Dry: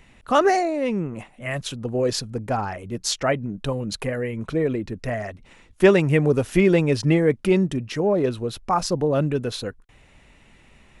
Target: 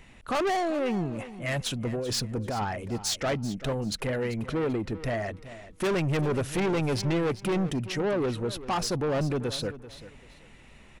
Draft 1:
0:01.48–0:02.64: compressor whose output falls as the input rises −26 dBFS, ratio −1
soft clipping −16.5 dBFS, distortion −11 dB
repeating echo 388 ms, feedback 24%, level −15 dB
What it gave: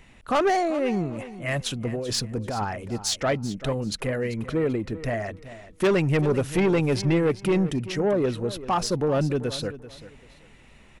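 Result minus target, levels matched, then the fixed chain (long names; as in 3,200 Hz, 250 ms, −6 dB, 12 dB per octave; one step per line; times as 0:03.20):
soft clipping: distortion −5 dB
0:01.48–0:02.64: compressor whose output falls as the input rises −26 dBFS, ratio −1
soft clipping −24 dBFS, distortion −6 dB
repeating echo 388 ms, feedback 24%, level −15 dB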